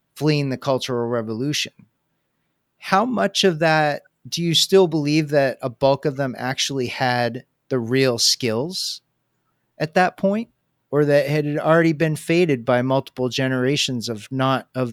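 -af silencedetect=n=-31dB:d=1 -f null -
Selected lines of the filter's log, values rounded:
silence_start: 1.68
silence_end: 2.85 | silence_duration: 1.17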